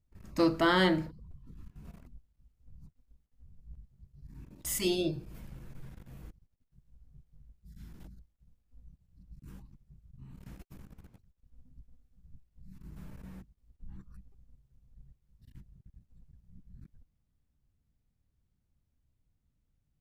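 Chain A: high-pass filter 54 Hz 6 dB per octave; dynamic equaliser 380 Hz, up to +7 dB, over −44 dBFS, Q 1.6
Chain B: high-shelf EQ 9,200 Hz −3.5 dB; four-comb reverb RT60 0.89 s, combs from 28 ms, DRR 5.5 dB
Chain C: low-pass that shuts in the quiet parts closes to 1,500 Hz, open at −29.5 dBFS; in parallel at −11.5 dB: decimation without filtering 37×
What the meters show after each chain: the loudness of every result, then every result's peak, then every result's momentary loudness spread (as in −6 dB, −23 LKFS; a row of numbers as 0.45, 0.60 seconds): −26.0, −30.0, −30.0 LKFS; −12.0, −14.0, −13.0 dBFS; 19, 24, 24 LU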